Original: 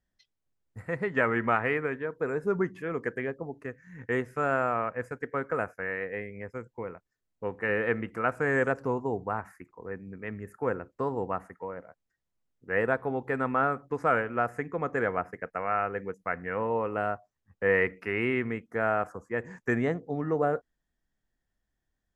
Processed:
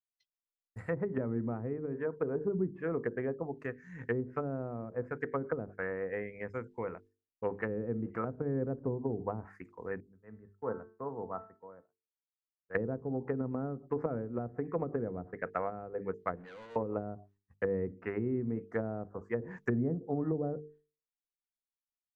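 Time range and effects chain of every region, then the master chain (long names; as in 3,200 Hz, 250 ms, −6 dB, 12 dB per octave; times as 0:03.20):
0:10.00–0:12.75: low-pass filter 1,400 Hz 24 dB per octave + tuned comb filter 220 Hz, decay 0.65 s, mix 70% + multiband upward and downward expander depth 70%
0:16.35–0:16.76: downward compressor 2 to 1, threshold −40 dBFS + tube saturation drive 47 dB, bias 0.4 + notch filter 5,300 Hz, Q 7.3
whole clip: downward expander −53 dBFS; mains-hum notches 50/100/150/200/250/300/350/400/450 Hz; treble cut that deepens with the level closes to 310 Hz, closed at −26 dBFS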